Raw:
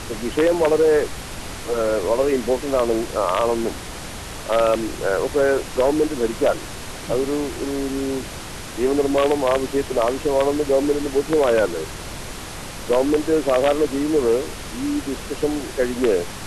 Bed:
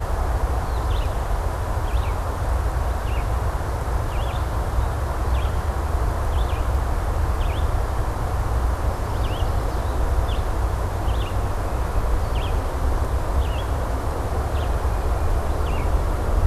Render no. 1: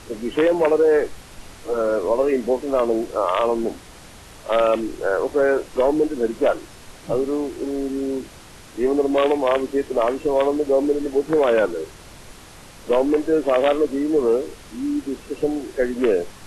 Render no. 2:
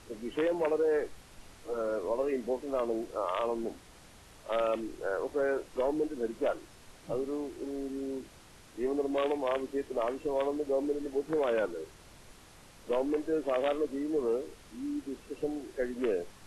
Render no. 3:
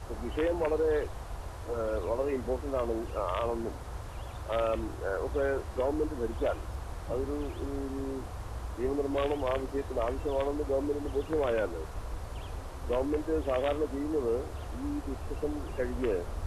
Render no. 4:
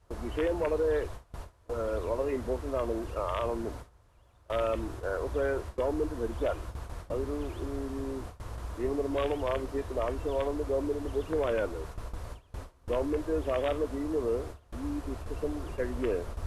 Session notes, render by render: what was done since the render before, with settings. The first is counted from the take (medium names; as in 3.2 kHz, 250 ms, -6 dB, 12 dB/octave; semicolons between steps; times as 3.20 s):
noise print and reduce 10 dB
trim -12 dB
add bed -17 dB
band-stop 790 Hz, Q 12; gate with hold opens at -29 dBFS